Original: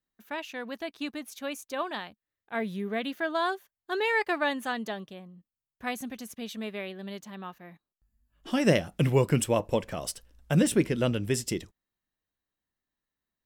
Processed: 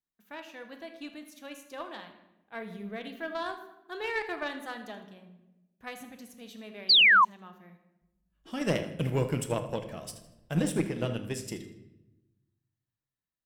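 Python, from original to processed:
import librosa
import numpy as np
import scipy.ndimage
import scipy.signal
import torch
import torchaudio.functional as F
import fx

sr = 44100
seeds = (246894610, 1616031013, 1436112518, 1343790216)

p1 = fx.room_shoebox(x, sr, seeds[0], volume_m3=420.0, walls='mixed', distance_m=0.62)
p2 = fx.cheby_harmonics(p1, sr, harmonics=(2, 5, 7), levels_db=(-13, -27, -23), full_scale_db=-7.5)
p3 = p2 + fx.echo_feedback(p2, sr, ms=79, feedback_pct=37, wet_db=-16.0, dry=0)
p4 = fx.spec_paint(p3, sr, seeds[1], shape='fall', start_s=6.89, length_s=0.36, low_hz=950.0, high_hz=4900.0, level_db=-12.0)
y = p4 * librosa.db_to_amplitude(-6.5)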